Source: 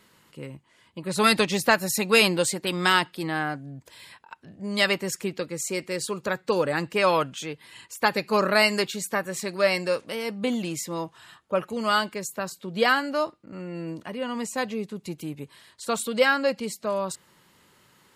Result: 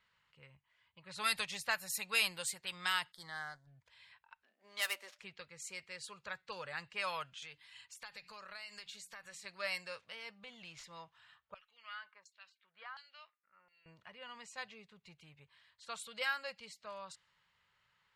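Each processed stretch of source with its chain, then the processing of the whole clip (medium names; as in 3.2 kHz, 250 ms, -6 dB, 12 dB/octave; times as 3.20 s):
3.12–3.67 s: companding laws mixed up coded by A + Butterworth band-stop 2.6 kHz, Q 1.8 + treble shelf 4.1 kHz +9 dB
4.43–5.19 s: dead-time distortion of 0.066 ms + steep high-pass 230 Hz 72 dB/octave + de-hum 293.5 Hz, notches 2
7.42–9.45 s: treble shelf 4.4 kHz +11.5 dB + hum notches 60/120/180/240/300 Hz + compression 16:1, threshold -29 dBFS
10.38–10.84 s: median filter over 5 samples + treble shelf 7.1 kHz +6.5 dB + compression 4:1, threshold -27 dBFS
11.54–13.86 s: LFO band-pass saw down 1.4 Hz 910–4800 Hz + compression 3:1, threshold -30 dBFS
whole clip: amplifier tone stack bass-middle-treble 10-0-10; level-controlled noise filter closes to 2.5 kHz, open at -24 dBFS; dynamic bell 5.9 kHz, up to -5 dB, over -45 dBFS, Q 0.88; trim -7 dB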